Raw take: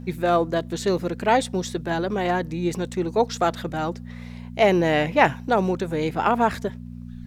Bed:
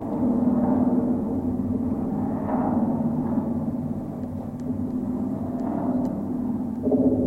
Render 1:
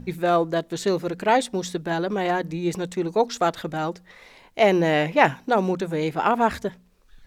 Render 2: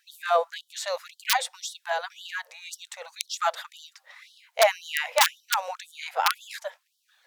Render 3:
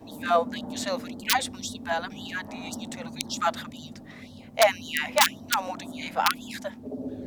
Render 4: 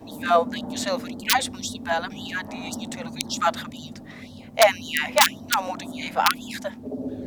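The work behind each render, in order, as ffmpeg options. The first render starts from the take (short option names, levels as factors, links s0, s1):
-af "bandreject=f=60:t=h:w=4,bandreject=f=120:t=h:w=4,bandreject=f=180:t=h:w=4,bandreject=f=240:t=h:w=4"
-af "aeval=exprs='(mod(2.51*val(0)+1,2)-1)/2.51':c=same,afftfilt=real='re*gte(b*sr/1024,470*pow(3000/470,0.5+0.5*sin(2*PI*1.9*pts/sr)))':imag='im*gte(b*sr/1024,470*pow(3000/470,0.5+0.5*sin(2*PI*1.9*pts/sr)))':win_size=1024:overlap=0.75"
-filter_complex "[1:a]volume=0.178[s0];[0:a][s0]amix=inputs=2:normalize=0"
-af "volume=1.5,alimiter=limit=0.794:level=0:latency=1"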